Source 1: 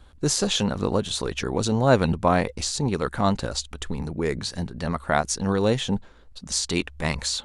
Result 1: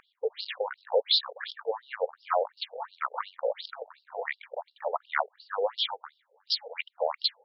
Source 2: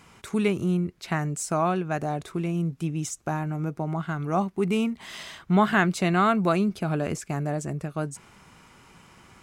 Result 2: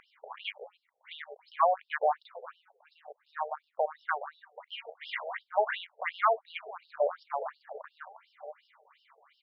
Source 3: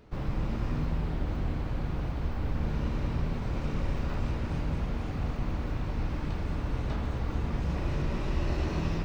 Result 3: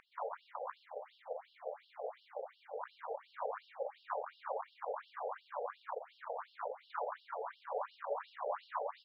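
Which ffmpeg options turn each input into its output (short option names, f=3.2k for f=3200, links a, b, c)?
-filter_complex "[0:a]acompressor=threshold=-32dB:ratio=2.5,adynamicequalizer=threshold=0.00158:dfrequency=4800:dqfactor=3.4:tfrequency=4800:tqfactor=3.4:attack=5:release=100:ratio=0.375:range=2.5:mode=boostabove:tftype=bell,asplit=2[a][b];[b]aecho=0:1:943|1886|2829|3772:0.178|0.0782|0.0344|0.0151[c];[a][c]amix=inputs=2:normalize=0,acrusher=bits=10:mix=0:aa=0.000001,equalizer=f=125:t=o:w=1:g=12,equalizer=f=250:t=o:w=1:g=-10,equalizer=f=500:t=o:w=1:g=12,equalizer=f=1k:t=o:w=1:g=9,equalizer=f=2k:t=o:w=1:g=9,equalizer=f=4k:t=o:w=1:g=10,aeval=exprs='val(0)+0.0158*(sin(2*PI*60*n/s)+sin(2*PI*2*60*n/s)/2+sin(2*PI*3*60*n/s)/3+sin(2*PI*4*60*n/s)/4+sin(2*PI*5*60*n/s)/5)':c=same,afwtdn=0.0355,bandreject=f=2.6k:w=10,acompressor=mode=upward:threshold=-40dB:ratio=2.5,afftfilt=real='re*between(b*sr/1024,580*pow(4000/580,0.5+0.5*sin(2*PI*2.8*pts/sr))/1.41,580*pow(4000/580,0.5+0.5*sin(2*PI*2.8*pts/sr))*1.41)':imag='im*between(b*sr/1024,580*pow(4000/580,0.5+0.5*sin(2*PI*2.8*pts/sr))/1.41,580*pow(4000/580,0.5+0.5*sin(2*PI*2.8*pts/sr))*1.41)':win_size=1024:overlap=0.75"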